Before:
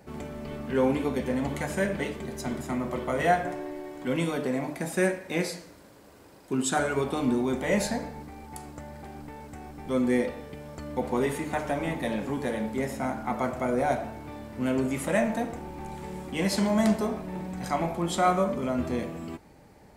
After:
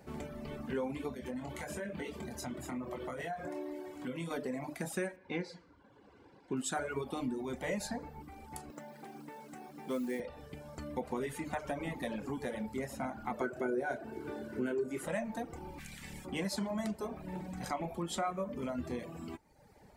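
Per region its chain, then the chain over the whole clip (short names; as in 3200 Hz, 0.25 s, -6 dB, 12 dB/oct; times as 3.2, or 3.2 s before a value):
1.14–4.31 HPF 51 Hz + compressor, threshold -32 dBFS + doubler 24 ms -6 dB
5.16–6.57 LPF 3500 Hz + notch comb 630 Hz
8.7–10.2 HPF 160 Hz 24 dB/oct + upward compressor, threshold -41 dBFS + modulation noise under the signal 24 dB
13.41–15.07 HPF 90 Hz + doubler 32 ms -10.5 dB + small resonant body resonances 380/1500 Hz, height 16 dB, ringing for 35 ms
15.78–16.24 spectral limiter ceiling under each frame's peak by 15 dB + band shelf 650 Hz -11.5 dB 2.4 oct
whole clip: compressor 3:1, threshold -30 dBFS; reverb removal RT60 0.91 s; gain -3.5 dB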